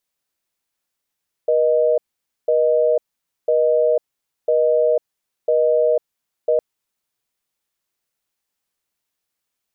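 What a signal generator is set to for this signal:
call progress tone busy tone, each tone −16 dBFS 5.11 s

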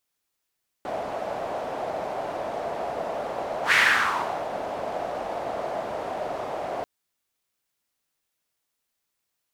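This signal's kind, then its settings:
pass-by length 5.99 s, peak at 0:02.88, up 0.11 s, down 0.75 s, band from 660 Hz, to 2,000 Hz, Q 3.4, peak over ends 12.5 dB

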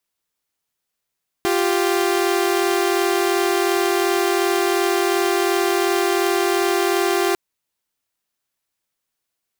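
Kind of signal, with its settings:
held notes F4/G4 saw, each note −17 dBFS 5.90 s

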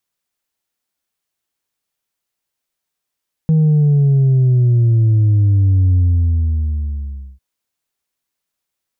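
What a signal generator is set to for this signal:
bass drop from 160 Hz, over 3.90 s, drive 2 dB, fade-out 1.44 s, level −9.5 dB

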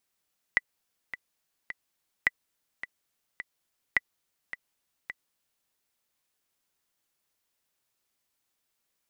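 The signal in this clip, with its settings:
click track 106 BPM, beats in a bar 3, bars 3, 1,980 Hz, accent 14 dB −8.5 dBFS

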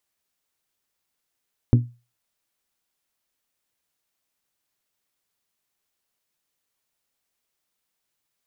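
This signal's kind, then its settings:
struck glass bell, lowest mode 120 Hz, decay 0.30 s, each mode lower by 6 dB, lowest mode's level −8.5 dB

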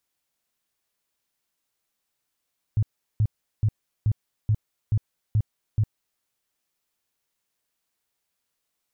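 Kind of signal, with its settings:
tone bursts 107 Hz, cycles 6, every 0.43 s, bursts 8, −17 dBFS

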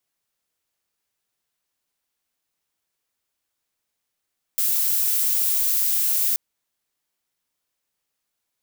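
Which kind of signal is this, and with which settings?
noise violet, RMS −21 dBFS 1.78 s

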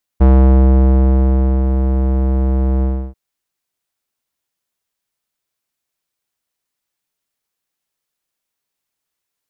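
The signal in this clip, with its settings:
subtractive voice square C2 12 dB per octave, low-pass 620 Hz, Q 0.75, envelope 0.5 octaves, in 0.46 s, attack 17 ms, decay 1.42 s, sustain −7 dB, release 0.31 s, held 2.63 s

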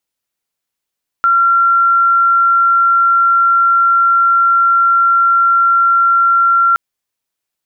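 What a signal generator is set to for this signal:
tone sine 1,370 Hz −7.5 dBFS 5.52 s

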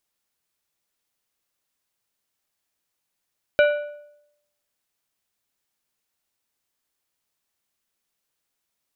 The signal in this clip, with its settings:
struck metal plate, lowest mode 589 Hz, decay 0.80 s, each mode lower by 6 dB, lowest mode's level −11.5 dB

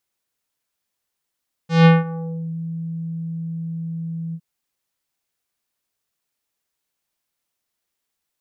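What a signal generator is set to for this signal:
subtractive voice square E3 24 dB per octave, low-pass 220 Hz, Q 0.78, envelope 5 octaves, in 0.85 s, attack 166 ms, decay 0.18 s, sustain −19 dB, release 0.06 s, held 2.65 s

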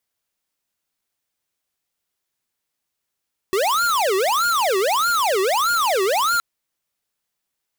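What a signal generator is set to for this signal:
siren wail 375–1,420 Hz 1.6 per second square −19 dBFS 2.87 s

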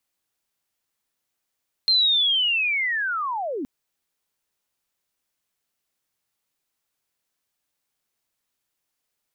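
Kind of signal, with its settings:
glide linear 4,200 Hz → 240 Hz −15 dBFS → −26 dBFS 1.77 s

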